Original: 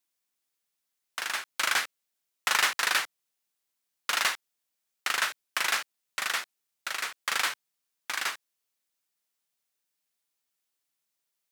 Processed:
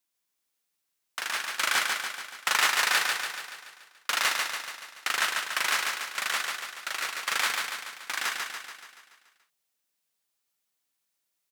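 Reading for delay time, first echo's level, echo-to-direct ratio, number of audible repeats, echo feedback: 143 ms, −3.5 dB, −2.0 dB, 7, 57%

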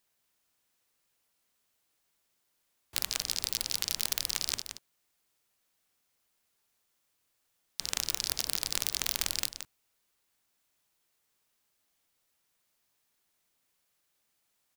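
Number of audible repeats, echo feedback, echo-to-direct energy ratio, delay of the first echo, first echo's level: 1, repeats not evenly spaced, −9.5 dB, 173 ms, −9.5 dB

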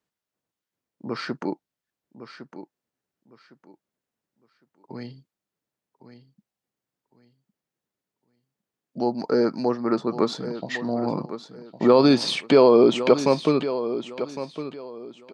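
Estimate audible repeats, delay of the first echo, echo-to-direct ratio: 2, 1,108 ms, −11.5 dB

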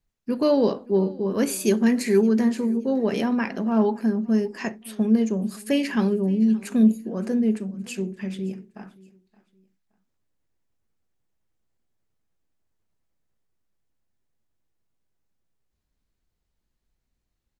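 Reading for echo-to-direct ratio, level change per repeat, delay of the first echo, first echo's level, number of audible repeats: −21.5 dB, −10.5 dB, 571 ms, −22.0 dB, 2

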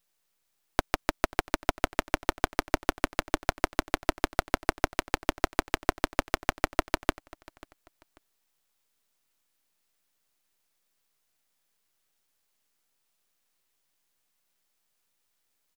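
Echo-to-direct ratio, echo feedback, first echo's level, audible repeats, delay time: −21.5 dB, 27%, −22.0 dB, 2, 540 ms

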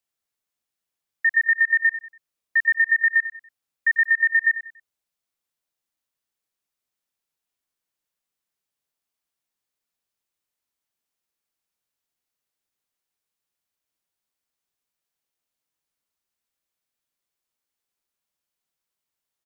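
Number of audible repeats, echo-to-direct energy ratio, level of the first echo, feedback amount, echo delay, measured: 3, −12.5 dB, −13.0 dB, 33%, 95 ms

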